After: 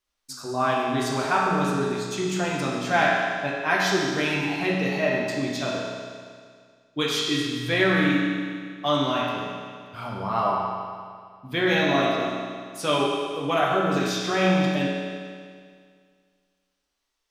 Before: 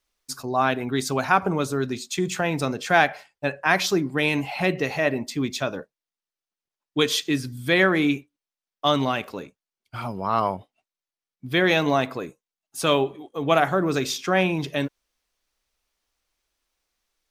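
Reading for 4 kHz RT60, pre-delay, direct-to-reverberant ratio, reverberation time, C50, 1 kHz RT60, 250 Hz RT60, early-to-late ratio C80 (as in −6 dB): 2.0 s, 8 ms, −5.0 dB, 2.0 s, −0.5 dB, 2.0 s, 2.0 s, 1.0 dB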